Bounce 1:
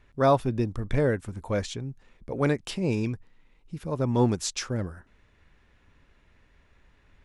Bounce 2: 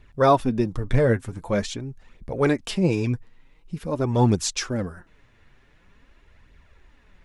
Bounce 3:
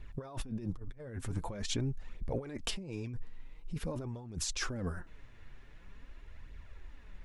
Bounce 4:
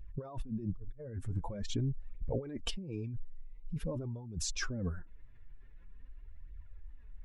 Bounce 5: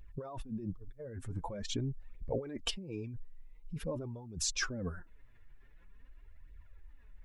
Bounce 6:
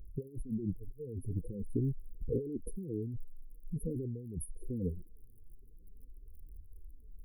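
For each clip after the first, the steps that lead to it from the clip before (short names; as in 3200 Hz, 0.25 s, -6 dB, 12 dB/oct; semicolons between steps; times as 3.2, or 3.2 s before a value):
flange 0.46 Hz, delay 0.2 ms, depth 8.8 ms, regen +31%; gain +8 dB
low shelf 64 Hz +10 dB; negative-ratio compressor -30 dBFS, ratio -1; gain -9 dB
spectral contrast raised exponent 1.5; gain +1 dB
low shelf 250 Hz -9 dB; gain +3.5 dB
crackle 39/s -47 dBFS; brick-wall FIR band-stop 510–9300 Hz; gain +3.5 dB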